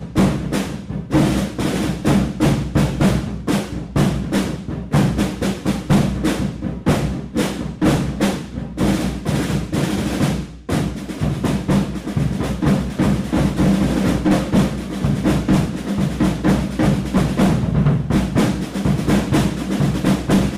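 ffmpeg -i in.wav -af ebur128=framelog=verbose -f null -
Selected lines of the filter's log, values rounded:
Integrated loudness:
  I:         -19.2 LUFS
  Threshold: -29.2 LUFS
Loudness range:
  LRA:         2.8 LU
  Threshold: -39.2 LUFS
  LRA low:   -20.8 LUFS
  LRA high:  -18.0 LUFS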